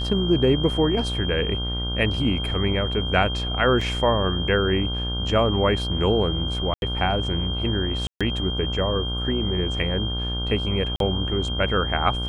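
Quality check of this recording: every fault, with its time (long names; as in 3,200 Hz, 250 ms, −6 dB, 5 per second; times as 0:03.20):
mains buzz 60 Hz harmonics 26 −28 dBFS
whistle 3,200 Hz −29 dBFS
0:03.81: drop-out 4.3 ms
0:06.74–0:06.82: drop-out 81 ms
0:08.07–0:08.21: drop-out 136 ms
0:10.96–0:11.00: drop-out 42 ms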